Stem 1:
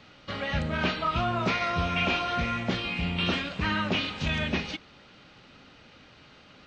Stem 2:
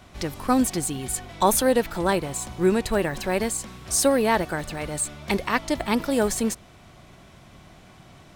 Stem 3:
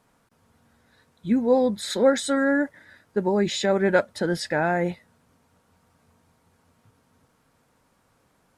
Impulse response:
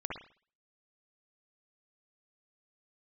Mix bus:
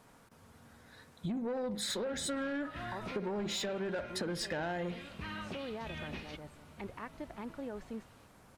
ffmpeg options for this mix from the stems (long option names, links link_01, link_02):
-filter_complex "[0:a]adelay=1600,volume=-14dB[link_01];[1:a]lowpass=2000,adelay=1500,volume=-17.5dB[link_02];[2:a]acompressor=threshold=-23dB:ratio=10,volume=2.5dB,asplit=2[link_03][link_04];[link_04]volume=-13dB[link_05];[link_01][link_02]amix=inputs=2:normalize=0,alimiter=level_in=7.5dB:limit=-24dB:level=0:latency=1:release=54,volume=-7.5dB,volume=0dB[link_06];[3:a]atrim=start_sample=2205[link_07];[link_05][link_07]afir=irnorm=-1:irlink=0[link_08];[link_03][link_06][link_08]amix=inputs=3:normalize=0,asoftclip=type=tanh:threshold=-21dB,acompressor=threshold=-35dB:ratio=6"